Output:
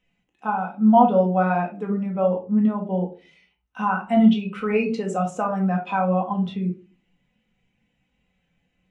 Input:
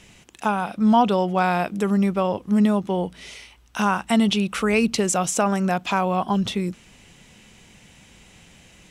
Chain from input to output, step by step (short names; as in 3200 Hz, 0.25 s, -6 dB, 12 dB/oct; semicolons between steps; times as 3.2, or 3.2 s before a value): tone controls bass -6 dB, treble -8 dB; shoebox room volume 490 m³, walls furnished, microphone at 2 m; spectral expander 1.5:1